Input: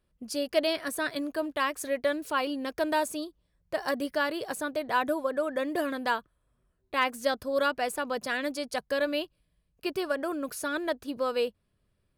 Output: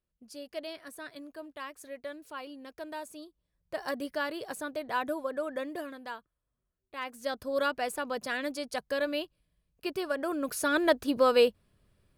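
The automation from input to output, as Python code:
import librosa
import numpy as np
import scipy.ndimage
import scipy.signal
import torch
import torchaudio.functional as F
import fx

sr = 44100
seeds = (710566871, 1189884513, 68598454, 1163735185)

y = fx.gain(x, sr, db=fx.line((3.03, -13.0), (3.8, -4.5), (5.57, -4.5), (6.0, -12.5), (6.96, -12.5), (7.47, -2.5), (10.09, -2.5), (10.88, 6.0)))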